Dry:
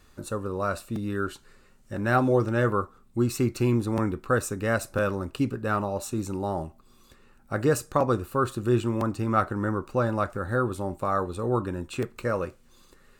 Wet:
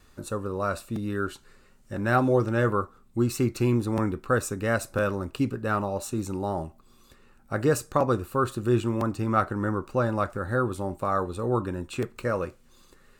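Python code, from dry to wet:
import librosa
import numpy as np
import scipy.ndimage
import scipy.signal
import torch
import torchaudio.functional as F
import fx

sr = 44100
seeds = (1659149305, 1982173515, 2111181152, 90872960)

y = fx.wow_flutter(x, sr, seeds[0], rate_hz=2.1, depth_cents=16.0)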